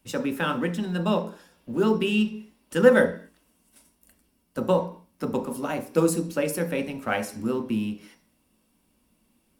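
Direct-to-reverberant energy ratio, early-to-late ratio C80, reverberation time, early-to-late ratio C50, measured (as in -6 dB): 4.0 dB, 17.0 dB, 0.45 s, 12.5 dB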